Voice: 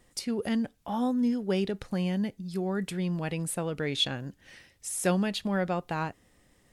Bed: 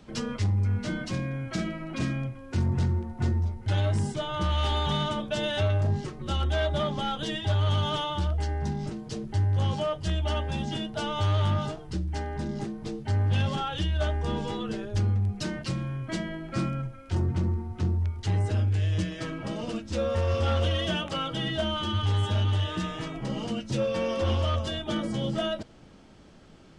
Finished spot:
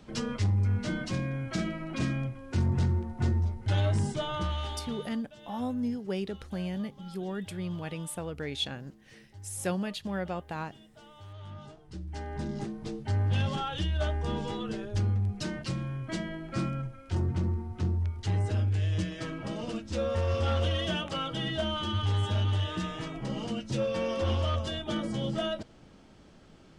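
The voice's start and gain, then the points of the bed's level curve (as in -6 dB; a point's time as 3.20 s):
4.60 s, -5.0 dB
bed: 4.30 s -1 dB
5.29 s -22.5 dB
11.30 s -22.5 dB
12.40 s -2.5 dB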